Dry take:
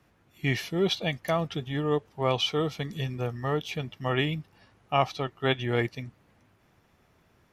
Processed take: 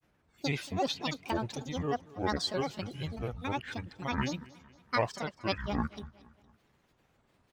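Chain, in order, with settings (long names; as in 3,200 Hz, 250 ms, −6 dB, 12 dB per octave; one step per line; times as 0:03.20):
granular cloud, spray 17 ms, pitch spread up and down by 12 semitones
on a send: repeating echo 231 ms, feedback 48%, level −21 dB
on the sum: level −4.5 dB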